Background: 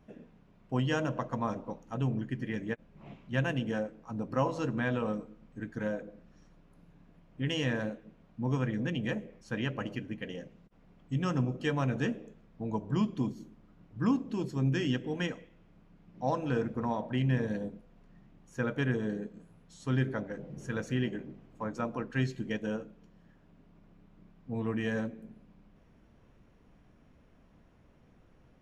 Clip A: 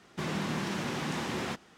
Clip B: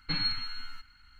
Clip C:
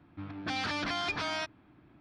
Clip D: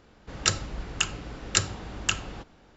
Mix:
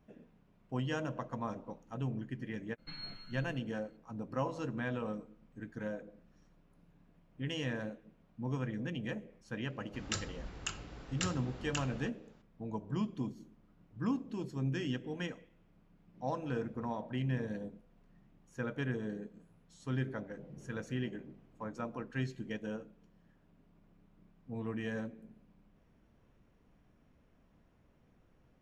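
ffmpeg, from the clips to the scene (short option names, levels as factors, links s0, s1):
-filter_complex "[0:a]volume=0.501[s0];[4:a]alimiter=limit=0.251:level=0:latency=1:release=19[s1];[2:a]atrim=end=1.19,asetpts=PTS-STARTPTS,volume=0.158,afade=t=in:d=0.004:c=hsin,afade=t=out:st=1.186:d=0.004:c=hsin,adelay=2780[s2];[s1]atrim=end=2.76,asetpts=PTS-STARTPTS,volume=0.316,afade=t=in:d=0.004:c=hsin,afade=t=out:st=2.756:d=0.004:c=hsin,adelay=9660[s3];[s0][s2][s3]amix=inputs=3:normalize=0"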